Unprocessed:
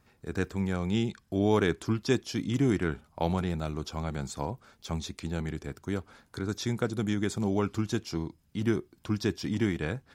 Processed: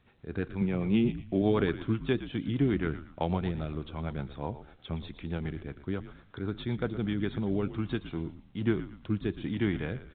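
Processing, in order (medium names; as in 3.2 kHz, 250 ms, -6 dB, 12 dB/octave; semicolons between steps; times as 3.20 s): rotary cabinet horn 8 Hz, later 1.2 Hz, at 6.59 s; 0.61–1.42 s: cabinet simulation 110–3100 Hz, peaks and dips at 150 Hz +7 dB, 230 Hz +6 dB, 360 Hz +4 dB, 590 Hz +3 dB, 1.5 kHz -8 dB, 2.5 kHz +6 dB; on a send: frequency-shifting echo 116 ms, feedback 35%, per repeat -67 Hz, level -13 dB; on the sum: A-law 64 kbps 8 kHz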